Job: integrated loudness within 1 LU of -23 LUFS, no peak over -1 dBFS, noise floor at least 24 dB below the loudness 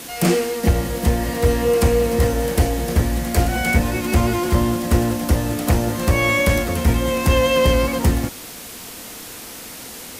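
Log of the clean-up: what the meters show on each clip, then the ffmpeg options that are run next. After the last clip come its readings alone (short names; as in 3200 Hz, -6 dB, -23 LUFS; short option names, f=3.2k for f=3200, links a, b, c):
noise floor -36 dBFS; noise floor target -43 dBFS; loudness -19.0 LUFS; peak -5.5 dBFS; loudness target -23.0 LUFS
-> -af "afftdn=nr=7:nf=-36"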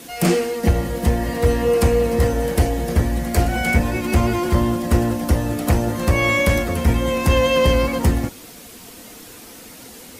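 noise floor -40 dBFS; noise floor target -43 dBFS
-> -af "afftdn=nr=6:nf=-40"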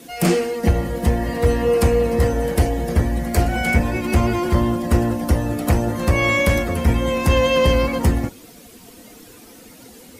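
noise floor -44 dBFS; loudness -19.0 LUFS; peak -5.5 dBFS; loudness target -23.0 LUFS
-> -af "volume=-4dB"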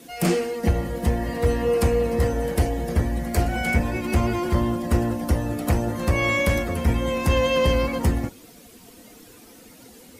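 loudness -23.0 LUFS; peak -9.5 dBFS; noise floor -48 dBFS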